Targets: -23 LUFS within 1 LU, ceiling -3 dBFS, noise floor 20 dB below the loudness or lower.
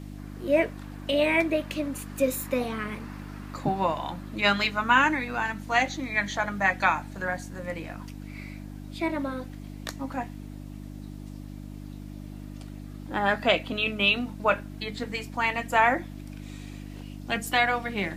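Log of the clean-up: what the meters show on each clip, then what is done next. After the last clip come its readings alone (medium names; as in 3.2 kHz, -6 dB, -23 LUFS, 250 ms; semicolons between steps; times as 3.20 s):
hum 50 Hz; highest harmonic 300 Hz; hum level -37 dBFS; loudness -26.5 LUFS; peak level -7.0 dBFS; loudness target -23.0 LUFS
-> de-hum 50 Hz, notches 6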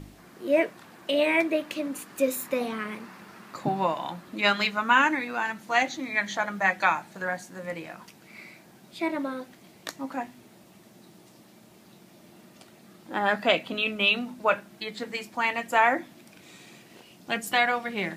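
hum not found; loudness -26.5 LUFS; peak level -7.0 dBFS; loudness target -23.0 LUFS
-> trim +3.5 dB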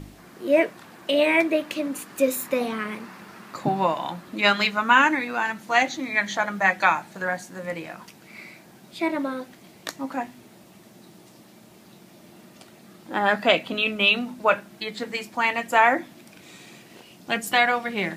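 loudness -23.0 LUFS; peak level -3.5 dBFS; noise floor -51 dBFS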